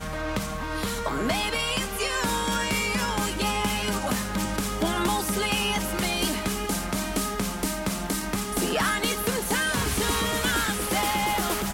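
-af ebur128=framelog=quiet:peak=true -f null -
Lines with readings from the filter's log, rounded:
Integrated loudness:
  I:         -25.9 LUFS
  Threshold: -35.9 LUFS
Loudness range:
  LRA:         2.0 LU
  Threshold: -46.0 LUFS
  LRA low:   -26.8 LUFS
  LRA high:  -24.7 LUFS
True peak:
  Peak:      -13.9 dBFS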